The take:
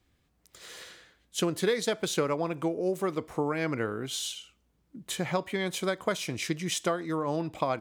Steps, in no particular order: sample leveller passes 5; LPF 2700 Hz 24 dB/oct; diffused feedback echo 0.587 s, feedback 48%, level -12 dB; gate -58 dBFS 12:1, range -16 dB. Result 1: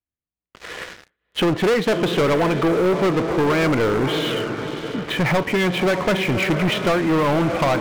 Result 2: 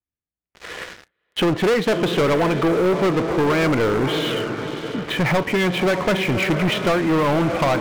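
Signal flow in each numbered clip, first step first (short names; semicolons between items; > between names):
diffused feedback echo > gate > LPF > sample leveller; LPF > gate > diffused feedback echo > sample leveller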